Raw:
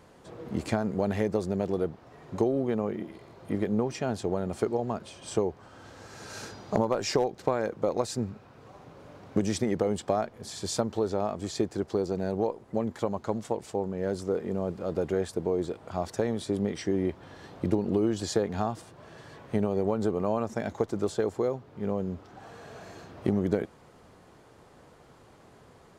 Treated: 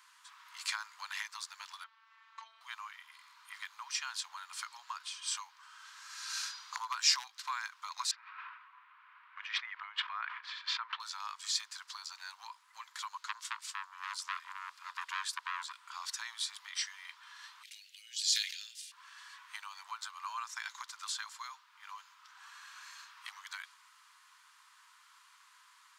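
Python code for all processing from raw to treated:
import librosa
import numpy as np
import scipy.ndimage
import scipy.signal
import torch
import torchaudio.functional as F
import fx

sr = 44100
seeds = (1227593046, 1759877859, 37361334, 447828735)

y = fx.chain(x, sr, fx.lowpass(hz=3100.0, slope=12),
    fx.robotise(hz=224.0), at=(1.84, 2.61))
y = fx.chain(y, sr, fx.cabinet(low_hz=130.0, low_slope=24, high_hz=2500.0, hz=(190.0, 490.0, 820.0), db=(-7, -6, -4)),
    fx.sustainer(db_per_s=49.0), at=(8.11, 11.0))
y = fx.chain(y, sr, fx.highpass(hz=140.0, slope=24),
    fx.notch(hz=780.0, q=6.2),
    fx.transformer_sat(knee_hz=1300.0), at=(13.17, 15.82))
y = fx.chain(y, sr, fx.cheby2_highpass(hz=1200.0, order=4, stop_db=40),
    fx.sustainer(db_per_s=68.0), at=(17.63, 18.92))
y = fx.dynamic_eq(y, sr, hz=4400.0, q=1.2, threshold_db=-55.0, ratio=4.0, max_db=5)
y = scipy.signal.sosfilt(scipy.signal.cheby1(6, 1.0, 980.0, 'highpass', fs=sr, output='sos'), y)
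y = fx.tilt_shelf(y, sr, db=-3.5, hz=1400.0)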